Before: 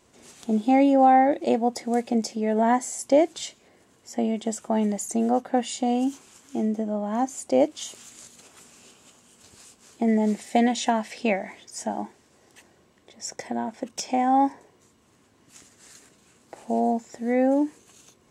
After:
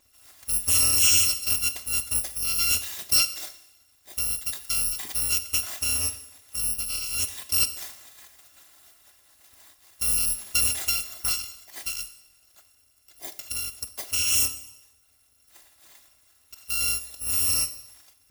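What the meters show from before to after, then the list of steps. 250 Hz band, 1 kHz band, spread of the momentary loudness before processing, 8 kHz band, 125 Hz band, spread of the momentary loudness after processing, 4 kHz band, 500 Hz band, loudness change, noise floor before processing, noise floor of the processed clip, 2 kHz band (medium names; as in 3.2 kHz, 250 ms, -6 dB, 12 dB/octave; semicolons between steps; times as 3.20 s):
-26.5 dB, -21.5 dB, 15 LU, +12.5 dB, no reading, 16 LU, +12.0 dB, -25.0 dB, +1.0 dB, -61 dBFS, -63 dBFS, +3.0 dB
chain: bit-reversed sample order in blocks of 256 samples; Schroeder reverb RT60 0.87 s, combs from 29 ms, DRR 11.5 dB; trim -3 dB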